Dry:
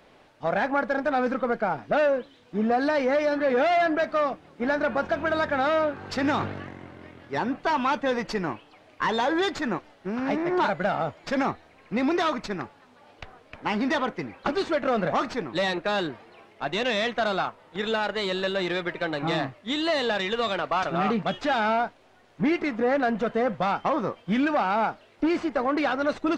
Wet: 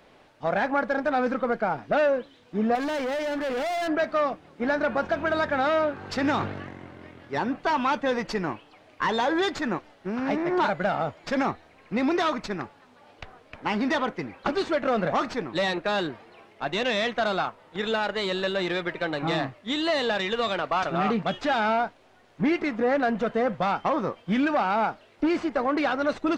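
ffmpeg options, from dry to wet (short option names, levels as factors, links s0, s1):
-filter_complex "[0:a]asettb=1/sr,asplit=3[s0][s1][s2];[s0]atrim=end=2.754[s3];[s1]atrim=start=2.75:end=3.88,asetpts=PTS-STARTPTS,afade=t=in:d=0.004:c=qsin,afade=t=out:st=1.126:d=0.004:c=qsin,volume=21.1,asoftclip=hard,volume=0.0473[s4];[s2]atrim=start=3.876[s5];[s3][s4]acrossfade=d=0.004:c1=hsin:c2=qsin[s6];[s6][s5]acrossfade=d=0.004:c1=qsin:c2=hsin"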